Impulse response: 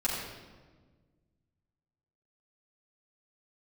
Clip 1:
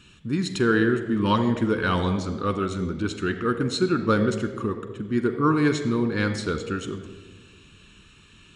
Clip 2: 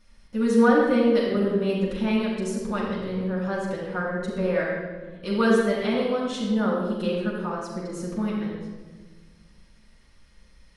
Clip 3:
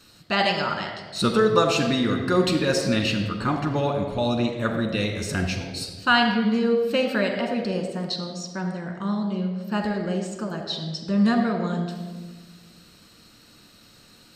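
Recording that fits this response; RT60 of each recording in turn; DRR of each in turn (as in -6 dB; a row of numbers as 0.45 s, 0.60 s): 2; 1.5 s, 1.4 s, 1.5 s; 6.5 dB, -8.0 dB, 2.0 dB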